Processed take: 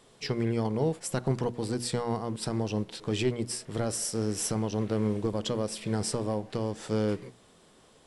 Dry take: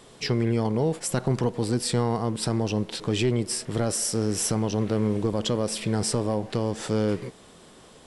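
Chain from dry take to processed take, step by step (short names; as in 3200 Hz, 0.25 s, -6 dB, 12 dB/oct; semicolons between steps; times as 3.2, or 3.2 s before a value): notches 60/120/180/240/300/360 Hz; upward expander 1.5:1, over -33 dBFS; gain -2 dB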